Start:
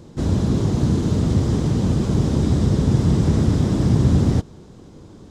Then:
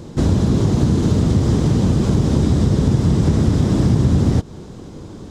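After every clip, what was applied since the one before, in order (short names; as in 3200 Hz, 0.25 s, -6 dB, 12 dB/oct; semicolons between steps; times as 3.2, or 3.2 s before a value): compressor 3:1, threshold -21 dBFS, peak gain reduction 8 dB; gain +8 dB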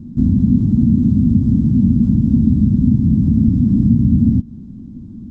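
EQ curve 160 Hz 0 dB, 240 Hz +10 dB, 420 Hz -24 dB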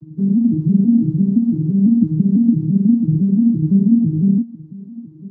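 arpeggiated vocoder major triad, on D#3, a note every 0.168 s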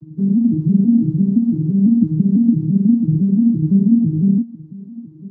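nothing audible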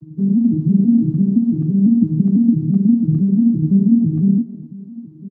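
speakerphone echo 0.25 s, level -14 dB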